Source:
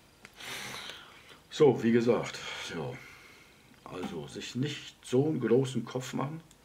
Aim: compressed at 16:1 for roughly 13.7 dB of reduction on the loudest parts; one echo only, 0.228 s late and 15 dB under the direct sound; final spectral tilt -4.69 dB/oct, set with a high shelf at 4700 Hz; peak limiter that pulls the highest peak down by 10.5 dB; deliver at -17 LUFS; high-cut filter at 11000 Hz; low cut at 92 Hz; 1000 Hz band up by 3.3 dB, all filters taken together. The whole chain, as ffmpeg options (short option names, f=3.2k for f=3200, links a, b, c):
-af "highpass=92,lowpass=11k,equalizer=f=1k:t=o:g=4.5,highshelf=f=4.7k:g=-7,acompressor=threshold=-30dB:ratio=16,alimiter=level_in=7dB:limit=-24dB:level=0:latency=1,volume=-7dB,aecho=1:1:228:0.178,volume=24.5dB"